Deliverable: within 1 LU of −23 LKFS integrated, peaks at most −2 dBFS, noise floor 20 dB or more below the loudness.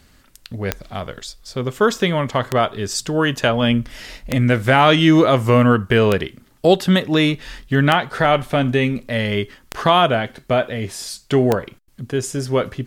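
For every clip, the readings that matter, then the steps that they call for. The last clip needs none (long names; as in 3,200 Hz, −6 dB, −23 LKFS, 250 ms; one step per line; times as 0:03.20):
number of clicks 7; integrated loudness −18.0 LKFS; sample peak −1.0 dBFS; target loudness −23.0 LKFS
→ click removal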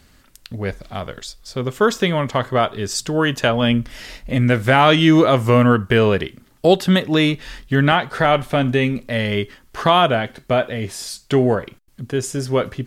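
number of clicks 0; integrated loudness −18.0 LKFS; sample peak −1.0 dBFS; target loudness −23.0 LKFS
→ level −5 dB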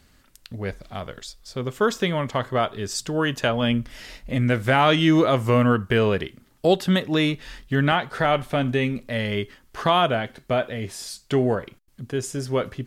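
integrated loudness −23.0 LKFS; sample peak −6.0 dBFS; background noise floor −58 dBFS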